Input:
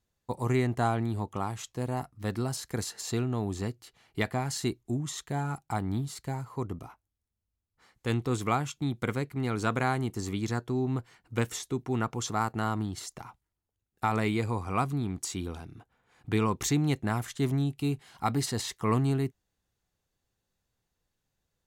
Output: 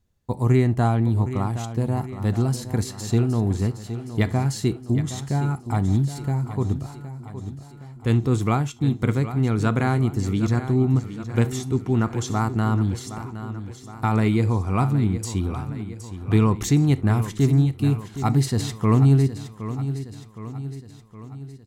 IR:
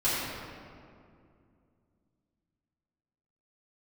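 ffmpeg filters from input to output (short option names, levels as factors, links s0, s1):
-filter_complex "[0:a]lowshelf=f=290:g=11.5,aecho=1:1:766|1532|2298|3064|3830|4596:0.251|0.136|0.0732|0.0396|0.0214|0.0115,asplit=2[s0][s1];[1:a]atrim=start_sample=2205,atrim=end_sample=3528[s2];[s1][s2]afir=irnorm=-1:irlink=0,volume=0.075[s3];[s0][s3]amix=inputs=2:normalize=0,volume=1.12"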